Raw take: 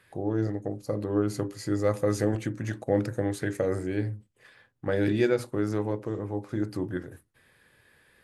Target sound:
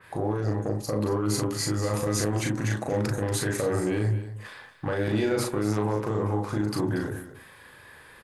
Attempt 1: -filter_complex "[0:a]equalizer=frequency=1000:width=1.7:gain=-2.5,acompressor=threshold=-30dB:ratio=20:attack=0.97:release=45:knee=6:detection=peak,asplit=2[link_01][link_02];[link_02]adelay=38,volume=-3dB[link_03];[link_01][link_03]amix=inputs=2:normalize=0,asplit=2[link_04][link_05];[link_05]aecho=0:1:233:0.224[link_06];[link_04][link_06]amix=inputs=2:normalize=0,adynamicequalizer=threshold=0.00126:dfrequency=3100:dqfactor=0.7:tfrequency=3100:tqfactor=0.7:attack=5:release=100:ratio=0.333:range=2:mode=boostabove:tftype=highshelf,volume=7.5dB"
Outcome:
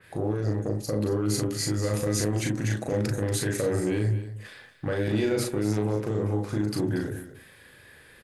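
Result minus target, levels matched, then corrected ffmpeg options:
1,000 Hz band −6.0 dB
-filter_complex "[0:a]equalizer=frequency=1000:width=1.7:gain=8.5,acompressor=threshold=-30dB:ratio=20:attack=0.97:release=45:knee=6:detection=peak,asplit=2[link_01][link_02];[link_02]adelay=38,volume=-3dB[link_03];[link_01][link_03]amix=inputs=2:normalize=0,asplit=2[link_04][link_05];[link_05]aecho=0:1:233:0.224[link_06];[link_04][link_06]amix=inputs=2:normalize=0,adynamicequalizer=threshold=0.00126:dfrequency=3100:dqfactor=0.7:tfrequency=3100:tqfactor=0.7:attack=5:release=100:ratio=0.333:range=2:mode=boostabove:tftype=highshelf,volume=7.5dB"

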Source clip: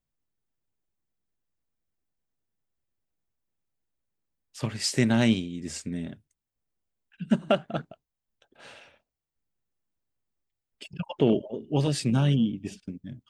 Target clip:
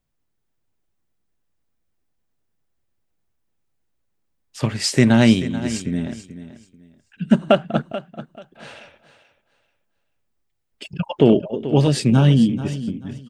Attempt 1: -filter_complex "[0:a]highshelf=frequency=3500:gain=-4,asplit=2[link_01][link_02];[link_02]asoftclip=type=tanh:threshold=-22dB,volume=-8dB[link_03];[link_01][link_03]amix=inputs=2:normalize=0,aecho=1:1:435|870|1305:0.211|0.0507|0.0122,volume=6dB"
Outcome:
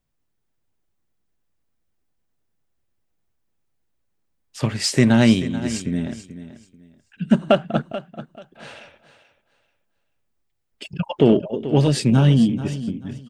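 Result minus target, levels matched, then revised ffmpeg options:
soft clipping: distortion +14 dB
-filter_complex "[0:a]highshelf=frequency=3500:gain=-4,asplit=2[link_01][link_02];[link_02]asoftclip=type=tanh:threshold=-10.5dB,volume=-8dB[link_03];[link_01][link_03]amix=inputs=2:normalize=0,aecho=1:1:435|870|1305:0.211|0.0507|0.0122,volume=6dB"

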